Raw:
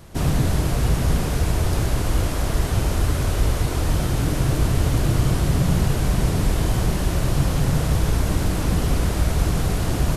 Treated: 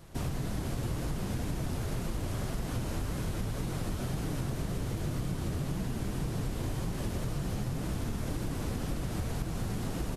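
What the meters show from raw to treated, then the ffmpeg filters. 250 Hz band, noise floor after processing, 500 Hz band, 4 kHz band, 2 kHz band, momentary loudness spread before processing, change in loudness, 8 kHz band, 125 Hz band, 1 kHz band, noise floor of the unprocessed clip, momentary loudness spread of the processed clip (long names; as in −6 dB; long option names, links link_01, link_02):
−10.5 dB, −36 dBFS, −12.0 dB, −13.5 dB, −13.5 dB, 2 LU, −13.5 dB, −13.5 dB, −13.5 dB, −13.0 dB, −24 dBFS, 1 LU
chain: -filter_complex "[0:a]asplit=9[link_01][link_02][link_03][link_04][link_05][link_06][link_07][link_08][link_09];[link_02]adelay=193,afreqshift=67,volume=-6.5dB[link_10];[link_03]adelay=386,afreqshift=134,volume=-11.1dB[link_11];[link_04]adelay=579,afreqshift=201,volume=-15.7dB[link_12];[link_05]adelay=772,afreqshift=268,volume=-20.2dB[link_13];[link_06]adelay=965,afreqshift=335,volume=-24.8dB[link_14];[link_07]adelay=1158,afreqshift=402,volume=-29.4dB[link_15];[link_08]adelay=1351,afreqshift=469,volume=-34dB[link_16];[link_09]adelay=1544,afreqshift=536,volume=-38.6dB[link_17];[link_01][link_10][link_11][link_12][link_13][link_14][link_15][link_16][link_17]amix=inputs=9:normalize=0,flanger=delay=5.5:depth=4.3:regen=-45:speed=1.9:shape=triangular,acompressor=threshold=-26dB:ratio=6,volume=-4dB"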